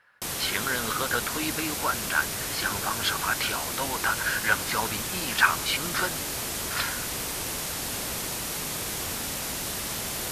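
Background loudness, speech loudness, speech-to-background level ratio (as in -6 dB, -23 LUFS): -29.5 LUFS, -28.5 LUFS, 1.0 dB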